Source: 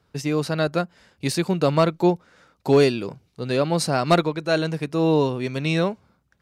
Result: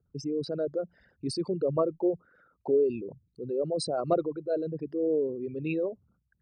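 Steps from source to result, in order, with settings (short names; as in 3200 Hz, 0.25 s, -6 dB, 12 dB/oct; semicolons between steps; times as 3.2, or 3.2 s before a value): formant sharpening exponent 3; gain -8 dB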